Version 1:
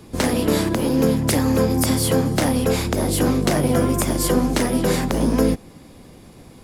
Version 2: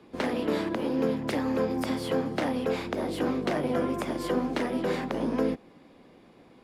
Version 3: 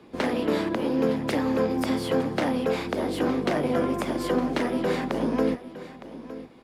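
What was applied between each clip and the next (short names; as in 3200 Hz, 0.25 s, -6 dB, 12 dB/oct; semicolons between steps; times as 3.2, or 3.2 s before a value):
three-band isolator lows -15 dB, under 200 Hz, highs -18 dB, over 3900 Hz; gain -7 dB
echo 0.912 s -15 dB; gain +3 dB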